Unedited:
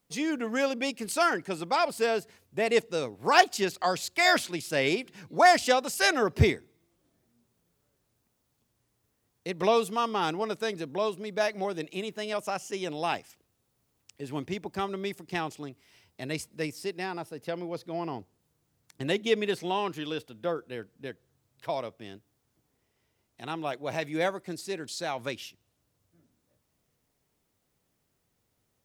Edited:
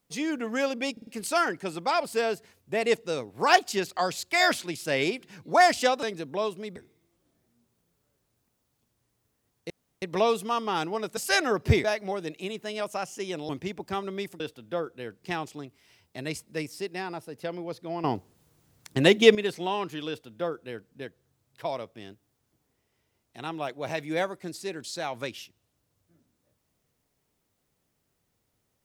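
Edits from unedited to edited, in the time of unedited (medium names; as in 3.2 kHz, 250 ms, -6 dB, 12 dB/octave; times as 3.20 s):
0.92 s: stutter 0.05 s, 4 plays
5.88–6.55 s: swap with 10.64–11.37 s
9.49 s: insert room tone 0.32 s
13.02–14.35 s: delete
18.08–19.39 s: gain +9.5 dB
20.12–20.94 s: copy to 15.26 s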